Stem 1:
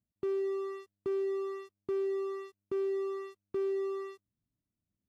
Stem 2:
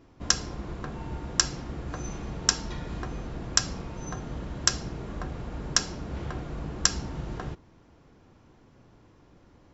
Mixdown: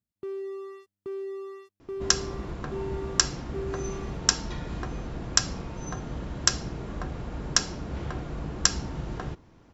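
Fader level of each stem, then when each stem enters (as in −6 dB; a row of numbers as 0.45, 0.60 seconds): −2.5, +1.0 decibels; 0.00, 1.80 seconds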